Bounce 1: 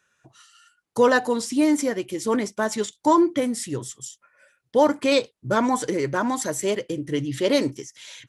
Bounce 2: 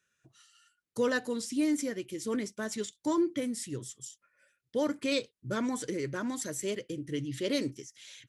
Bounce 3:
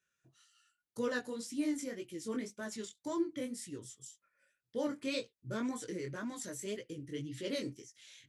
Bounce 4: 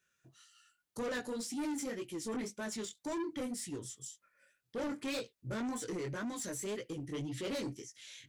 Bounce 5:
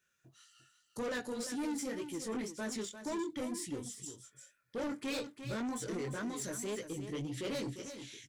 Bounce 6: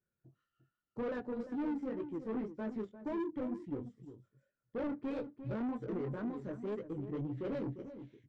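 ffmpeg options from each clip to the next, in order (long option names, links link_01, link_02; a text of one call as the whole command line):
ffmpeg -i in.wav -af "equalizer=frequency=850:width_type=o:width=1:gain=-12.5,volume=-7.5dB" out.wav
ffmpeg -i in.wav -af "flanger=delay=17:depth=6.6:speed=1.9,volume=-3.5dB" out.wav
ffmpeg -i in.wav -af "asoftclip=type=tanh:threshold=-39dB,volume=5dB" out.wav
ffmpeg -i in.wav -af "aecho=1:1:349:0.316" out.wav
ffmpeg -i in.wav -af "adynamicsmooth=sensitivity=2:basefreq=600,volume=1.5dB" out.wav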